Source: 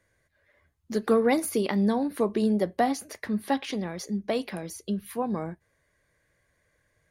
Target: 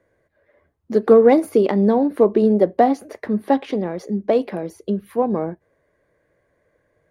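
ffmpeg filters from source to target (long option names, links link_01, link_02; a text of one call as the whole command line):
ffmpeg -i in.wav -filter_complex "[0:a]equalizer=frequency=450:width=0.49:gain=13,asplit=2[link_01][link_02];[link_02]adynamicsmooth=sensitivity=2.5:basefreq=3700,volume=1dB[link_03];[link_01][link_03]amix=inputs=2:normalize=0,volume=-7.5dB" out.wav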